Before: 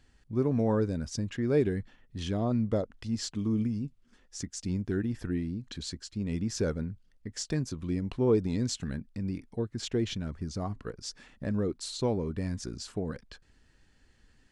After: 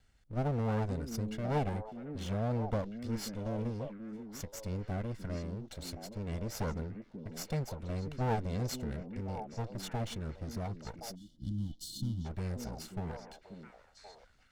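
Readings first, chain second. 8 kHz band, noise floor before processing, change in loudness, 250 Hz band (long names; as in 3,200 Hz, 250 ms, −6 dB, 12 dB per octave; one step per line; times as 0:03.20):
−6.5 dB, −65 dBFS, −6.0 dB, −8.0 dB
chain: lower of the sound and its delayed copy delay 1.4 ms
echo through a band-pass that steps 535 ms, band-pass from 260 Hz, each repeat 1.4 octaves, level −3.5 dB
gain on a spectral selection 0:11.15–0:12.25, 360–2,900 Hz −29 dB
level −4.5 dB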